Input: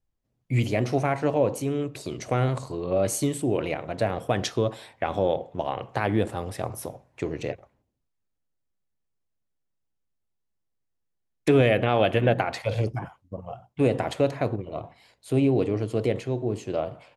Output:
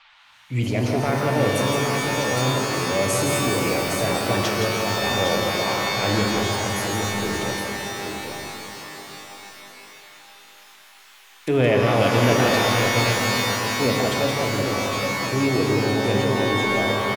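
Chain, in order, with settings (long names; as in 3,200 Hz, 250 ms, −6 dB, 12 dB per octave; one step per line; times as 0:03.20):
transient designer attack −4 dB, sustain +4 dB
on a send: multi-tap delay 168/813 ms −5.5/−6 dB
on the sum: noise in a band 800–3,700 Hz −54 dBFS
reverb with rising layers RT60 4 s, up +12 semitones, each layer −2 dB, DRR 3 dB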